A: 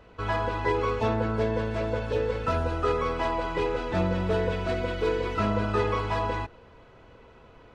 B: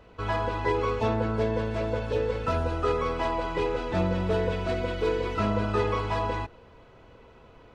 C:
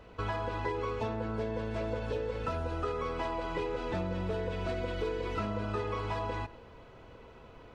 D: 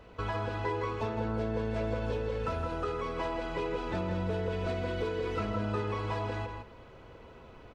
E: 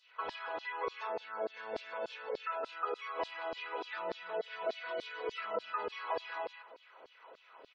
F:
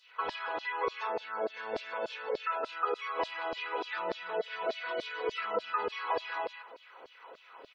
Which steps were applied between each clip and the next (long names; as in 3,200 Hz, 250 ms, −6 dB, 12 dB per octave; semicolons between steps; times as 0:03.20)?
parametric band 1,600 Hz −2 dB
downward compressor, threshold −31 dBFS, peak gain reduction 10 dB; on a send at −19 dB: convolution reverb RT60 0.40 s, pre-delay 79 ms
slap from a distant wall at 28 metres, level −6 dB
auto-filter high-pass saw down 3.4 Hz 440–4,600 Hz; gate on every frequency bin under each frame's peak −30 dB strong; level −3.5 dB
notch filter 630 Hz, Q 12; level +5 dB